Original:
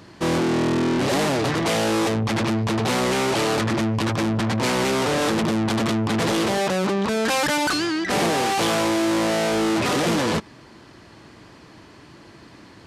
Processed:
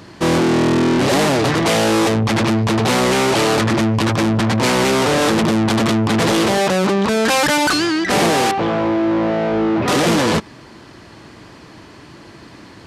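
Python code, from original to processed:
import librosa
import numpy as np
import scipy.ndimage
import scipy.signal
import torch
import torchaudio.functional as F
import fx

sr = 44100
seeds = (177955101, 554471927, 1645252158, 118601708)

y = fx.spacing_loss(x, sr, db_at_10k=40, at=(8.51, 9.88))
y = F.gain(torch.from_numpy(y), 6.0).numpy()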